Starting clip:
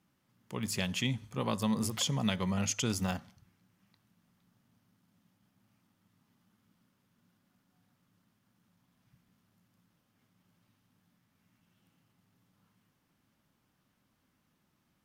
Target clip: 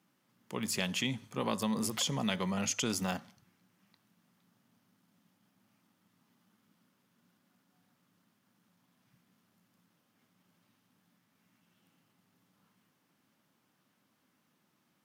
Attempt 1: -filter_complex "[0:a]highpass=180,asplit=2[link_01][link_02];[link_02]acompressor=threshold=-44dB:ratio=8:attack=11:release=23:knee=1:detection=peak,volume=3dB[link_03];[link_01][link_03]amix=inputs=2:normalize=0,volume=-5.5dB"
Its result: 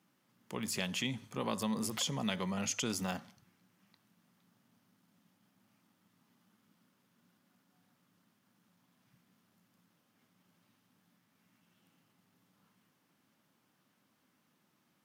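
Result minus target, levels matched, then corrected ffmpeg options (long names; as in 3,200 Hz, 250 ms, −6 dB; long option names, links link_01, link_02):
downward compressor: peak gain reduction +6.5 dB
-filter_complex "[0:a]highpass=180,asplit=2[link_01][link_02];[link_02]acompressor=threshold=-36.5dB:ratio=8:attack=11:release=23:knee=1:detection=peak,volume=3dB[link_03];[link_01][link_03]amix=inputs=2:normalize=0,volume=-5.5dB"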